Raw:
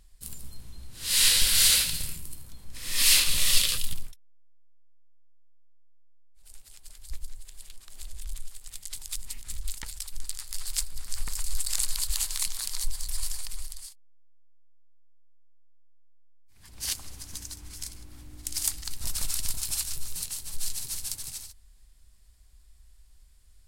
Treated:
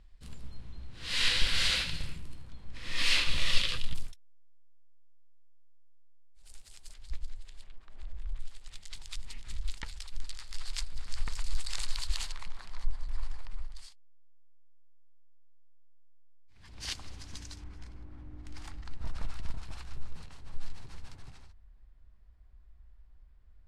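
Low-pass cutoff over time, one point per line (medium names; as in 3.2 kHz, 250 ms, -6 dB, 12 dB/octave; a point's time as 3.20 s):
3 kHz
from 3.95 s 7.3 kHz
from 6.94 s 3.8 kHz
from 7.64 s 1.7 kHz
from 8.39 s 3.8 kHz
from 12.32 s 1.5 kHz
from 13.75 s 4 kHz
from 17.64 s 1.5 kHz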